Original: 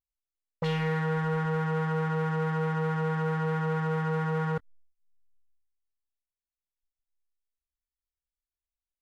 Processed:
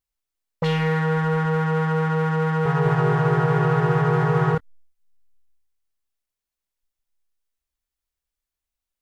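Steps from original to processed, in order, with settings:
0:02.45–0:04.55: delay with pitch and tempo change per echo 203 ms, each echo −2 semitones, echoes 2
level +7 dB

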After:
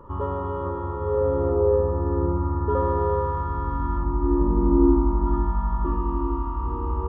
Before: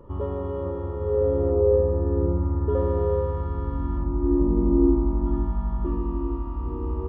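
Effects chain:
flat-topped bell 1,200 Hz +9.5 dB 1.1 octaves
flutter between parallel walls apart 11.3 metres, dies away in 0.32 s

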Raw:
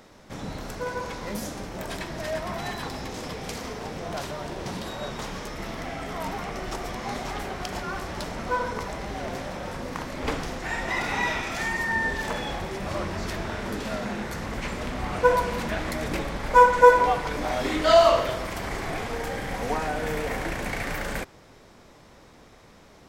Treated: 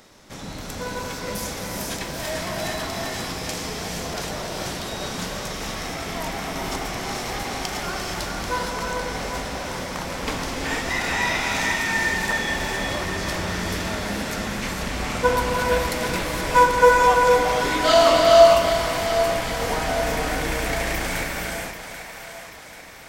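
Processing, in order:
high-shelf EQ 2,500 Hz +8.5 dB
echo with a time of its own for lows and highs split 560 Hz, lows 278 ms, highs 788 ms, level −10 dB
reverb whose tail is shaped and stops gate 500 ms rising, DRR −0.5 dB
level −1.5 dB

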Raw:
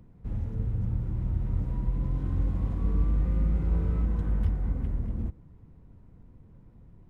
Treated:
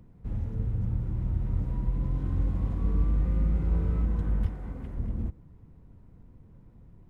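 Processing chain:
0:04.46–0:04.97: low-shelf EQ 190 Hz −10 dB

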